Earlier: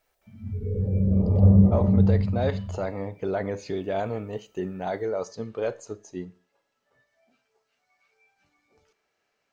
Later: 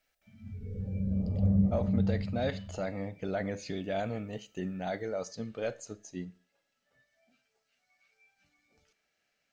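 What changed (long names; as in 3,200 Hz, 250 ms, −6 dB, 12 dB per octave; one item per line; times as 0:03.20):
background −6.5 dB
master: add graphic EQ with 15 bands 100 Hz −5 dB, 400 Hz −10 dB, 1,000 Hz −12 dB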